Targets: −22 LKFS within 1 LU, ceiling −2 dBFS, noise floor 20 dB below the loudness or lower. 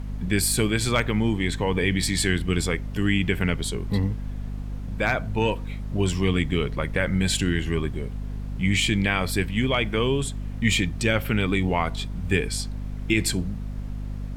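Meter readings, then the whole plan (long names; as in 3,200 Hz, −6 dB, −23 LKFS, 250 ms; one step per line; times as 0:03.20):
mains hum 50 Hz; hum harmonics up to 250 Hz; level of the hum −29 dBFS; background noise floor −33 dBFS; target noise floor −45 dBFS; integrated loudness −25.0 LKFS; sample peak −5.5 dBFS; target loudness −22.0 LKFS
→ hum removal 50 Hz, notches 5
noise reduction from a noise print 12 dB
level +3 dB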